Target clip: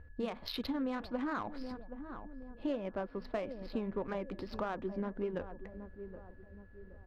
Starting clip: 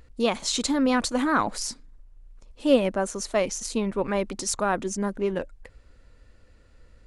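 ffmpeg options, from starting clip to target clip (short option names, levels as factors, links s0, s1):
-filter_complex "[0:a]equalizer=f=81:t=o:w=0.29:g=13.5,asplit=2[s0][s1];[s1]adelay=772,lowpass=f=920:p=1,volume=0.158,asplit=2[s2][s3];[s3]adelay=772,lowpass=f=920:p=1,volume=0.45,asplit=2[s4][s5];[s5]adelay=772,lowpass=f=920:p=1,volume=0.45,asplit=2[s6][s7];[s7]adelay=772,lowpass=f=920:p=1,volume=0.45[s8];[s0][s2][s4][s6][s8]amix=inputs=5:normalize=0,aresample=11025,aeval=exprs='clip(val(0),-1,0.178)':c=same,aresample=44100,acompressor=threshold=0.0398:ratio=10,flanger=delay=2.1:depth=6.1:regen=-78:speed=1.7:shape=triangular,adynamicsmooth=sensitivity=5.5:basefreq=1600,aeval=exprs='val(0)+0.000501*sin(2*PI*1700*n/s)':c=same"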